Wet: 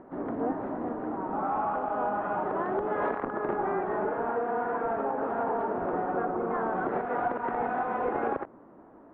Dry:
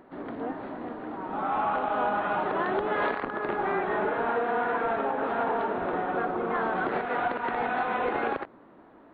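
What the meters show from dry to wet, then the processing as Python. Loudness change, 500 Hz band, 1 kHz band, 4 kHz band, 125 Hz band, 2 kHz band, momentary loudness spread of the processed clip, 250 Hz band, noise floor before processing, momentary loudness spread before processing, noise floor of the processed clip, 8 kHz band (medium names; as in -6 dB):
-1.5 dB, -0.5 dB, -1.5 dB, under -15 dB, 0.0 dB, -6.5 dB, 3 LU, +0.5 dB, -53 dBFS, 9 LU, -52 dBFS, no reading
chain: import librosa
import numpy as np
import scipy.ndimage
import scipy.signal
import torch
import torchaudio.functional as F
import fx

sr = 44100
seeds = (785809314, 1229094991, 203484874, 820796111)

y = scipy.signal.sosfilt(scipy.signal.butter(2, 1200.0, 'lowpass', fs=sr, output='sos'), x)
y = fx.rider(y, sr, range_db=4, speed_s=0.5)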